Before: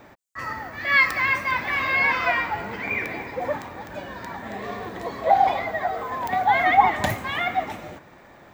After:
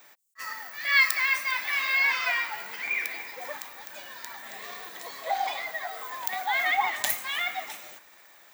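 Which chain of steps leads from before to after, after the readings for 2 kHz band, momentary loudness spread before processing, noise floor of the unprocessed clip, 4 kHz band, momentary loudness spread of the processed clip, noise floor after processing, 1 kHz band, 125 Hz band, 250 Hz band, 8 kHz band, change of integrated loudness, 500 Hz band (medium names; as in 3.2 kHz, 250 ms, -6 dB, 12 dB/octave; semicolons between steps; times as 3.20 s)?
-3.0 dB, 17 LU, -49 dBFS, +2.0 dB, 17 LU, -55 dBFS, -10.5 dB, under -25 dB, -20.5 dB, no reading, -4.0 dB, -13.0 dB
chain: differentiator; attacks held to a fixed rise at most 560 dB/s; trim +8 dB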